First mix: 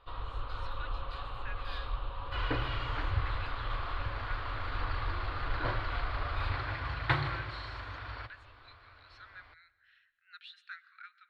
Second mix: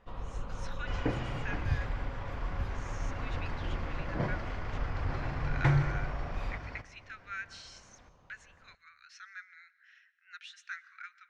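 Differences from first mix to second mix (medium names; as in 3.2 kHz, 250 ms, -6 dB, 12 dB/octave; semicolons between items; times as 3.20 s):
speech +9.5 dB; second sound: entry -1.45 s; master: remove FFT filter 120 Hz 0 dB, 180 Hz -27 dB, 270 Hz -4 dB, 790 Hz -1 dB, 1.2 kHz +8 dB, 2.1 kHz +2 dB, 4.2 kHz +12 dB, 6.1 kHz -14 dB, 9 kHz -2 dB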